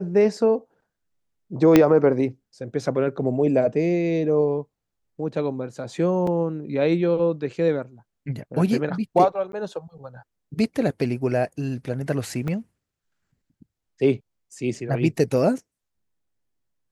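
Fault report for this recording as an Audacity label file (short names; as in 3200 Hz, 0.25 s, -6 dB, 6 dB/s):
1.760000	1.760000	pop -2 dBFS
6.270000	6.270000	gap 3.6 ms
9.520000	9.530000	gap
12.480000	12.480000	gap 2.7 ms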